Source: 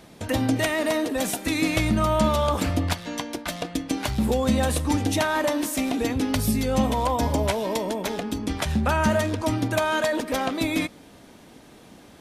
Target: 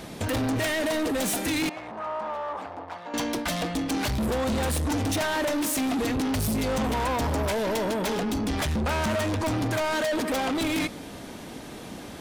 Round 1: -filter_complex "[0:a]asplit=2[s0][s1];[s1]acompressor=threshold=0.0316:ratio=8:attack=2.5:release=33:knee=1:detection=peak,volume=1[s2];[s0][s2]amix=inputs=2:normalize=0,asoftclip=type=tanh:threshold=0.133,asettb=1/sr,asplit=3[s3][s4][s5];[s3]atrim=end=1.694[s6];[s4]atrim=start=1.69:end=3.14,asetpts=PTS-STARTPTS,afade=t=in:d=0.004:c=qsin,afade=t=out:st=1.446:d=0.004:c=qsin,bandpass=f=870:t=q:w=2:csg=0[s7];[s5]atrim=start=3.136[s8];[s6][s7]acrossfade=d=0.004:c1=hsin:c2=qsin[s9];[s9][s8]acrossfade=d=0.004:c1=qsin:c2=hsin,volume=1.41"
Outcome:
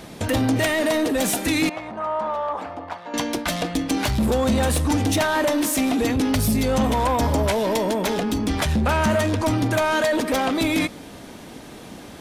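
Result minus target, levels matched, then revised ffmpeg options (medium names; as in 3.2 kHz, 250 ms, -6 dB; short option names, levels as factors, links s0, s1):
saturation: distortion -7 dB
-filter_complex "[0:a]asplit=2[s0][s1];[s1]acompressor=threshold=0.0316:ratio=8:attack=2.5:release=33:knee=1:detection=peak,volume=1[s2];[s0][s2]amix=inputs=2:normalize=0,asoftclip=type=tanh:threshold=0.0447,asettb=1/sr,asplit=3[s3][s4][s5];[s3]atrim=end=1.694[s6];[s4]atrim=start=1.69:end=3.14,asetpts=PTS-STARTPTS,afade=t=in:d=0.004:c=qsin,afade=t=out:st=1.446:d=0.004:c=qsin,bandpass=f=870:t=q:w=2:csg=0[s7];[s5]atrim=start=3.136[s8];[s6][s7]acrossfade=d=0.004:c1=hsin:c2=qsin[s9];[s9][s8]acrossfade=d=0.004:c1=qsin:c2=hsin,volume=1.41"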